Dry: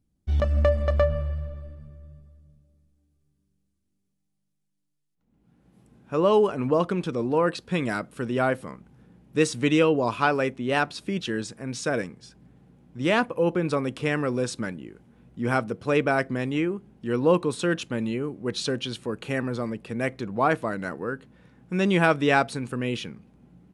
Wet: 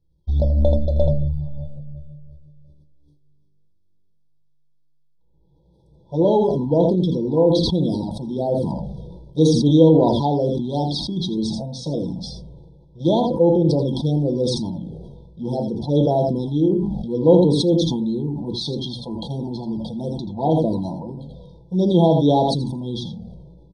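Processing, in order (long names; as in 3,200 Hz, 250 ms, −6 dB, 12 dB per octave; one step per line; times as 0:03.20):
Savitzky-Golay smoothing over 15 samples
single-tap delay 82 ms −9.5 dB
convolution reverb RT60 0.30 s, pre-delay 6 ms, DRR 7.5 dB
flanger swept by the level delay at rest 2.1 ms, full sweep at −16.5 dBFS
brick-wall band-stop 1,000–3,200 Hz
level that may fall only so fast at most 32 dB per second
level +4.5 dB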